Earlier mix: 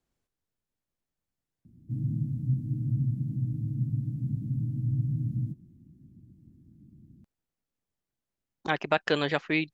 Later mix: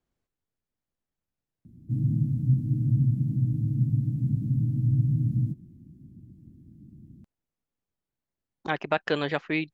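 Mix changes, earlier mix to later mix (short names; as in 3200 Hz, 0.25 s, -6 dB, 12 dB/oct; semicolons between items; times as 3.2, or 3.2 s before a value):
speech: add high shelf 4500 Hz -7.5 dB; background +5.0 dB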